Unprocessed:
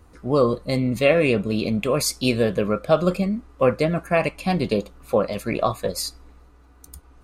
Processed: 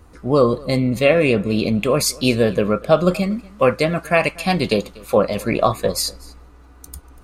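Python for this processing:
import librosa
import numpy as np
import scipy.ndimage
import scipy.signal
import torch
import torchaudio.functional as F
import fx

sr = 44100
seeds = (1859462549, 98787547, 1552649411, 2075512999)

p1 = fx.tilt_shelf(x, sr, db=-3.5, hz=970.0, at=(3.14, 5.17))
p2 = fx.rider(p1, sr, range_db=10, speed_s=0.5)
p3 = p1 + F.gain(torch.from_numpy(p2), -2.0).numpy()
p4 = p3 + 10.0 ** (-23.0 / 20.0) * np.pad(p3, (int(241 * sr / 1000.0), 0))[:len(p3)]
y = F.gain(torch.from_numpy(p4), -1.0).numpy()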